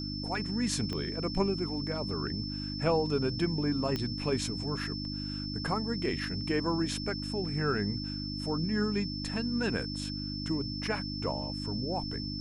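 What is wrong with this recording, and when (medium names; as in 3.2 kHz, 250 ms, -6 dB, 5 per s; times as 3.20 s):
hum 50 Hz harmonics 6 -38 dBFS
whine 5.3 kHz -39 dBFS
0.93 s: pop -23 dBFS
3.96 s: pop -19 dBFS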